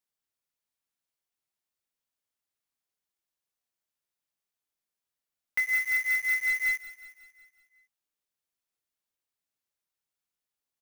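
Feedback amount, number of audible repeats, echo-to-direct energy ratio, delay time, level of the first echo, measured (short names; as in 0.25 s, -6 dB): 57%, 5, -13.5 dB, 0.183 s, -15.0 dB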